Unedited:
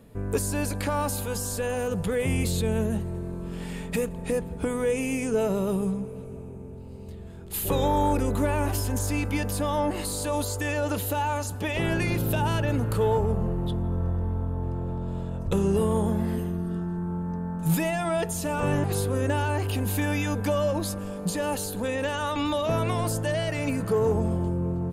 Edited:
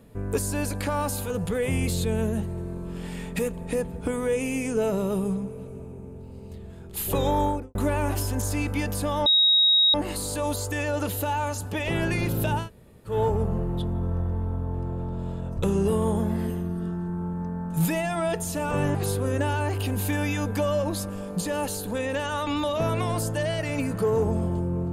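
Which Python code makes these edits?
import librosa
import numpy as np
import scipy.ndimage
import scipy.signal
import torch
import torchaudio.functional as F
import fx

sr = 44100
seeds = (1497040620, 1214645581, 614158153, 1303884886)

y = fx.studio_fade_out(x, sr, start_s=7.96, length_s=0.36)
y = fx.edit(y, sr, fx.cut(start_s=1.3, length_s=0.57),
    fx.insert_tone(at_s=9.83, length_s=0.68, hz=3790.0, db=-15.5),
    fx.room_tone_fill(start_s=12.51, length_s=0.5, crossfade_s=0.16), tone=tone)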